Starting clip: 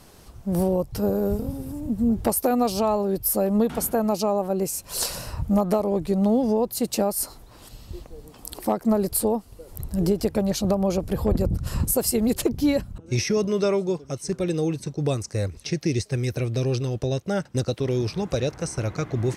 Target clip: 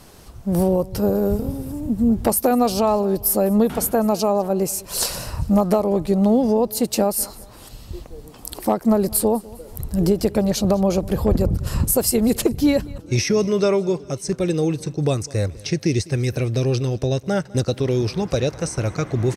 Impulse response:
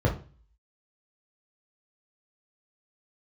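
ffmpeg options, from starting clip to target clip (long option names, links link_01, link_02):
-af "aecho=1:1:202|404|606:0.0794|0.0318|0.0127,volume=4dB"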